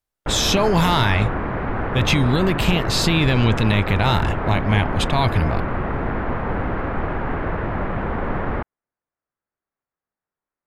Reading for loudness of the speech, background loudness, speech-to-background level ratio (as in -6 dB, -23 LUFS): -20.0 LUFS, -25.5 LUFS, 5.5 dB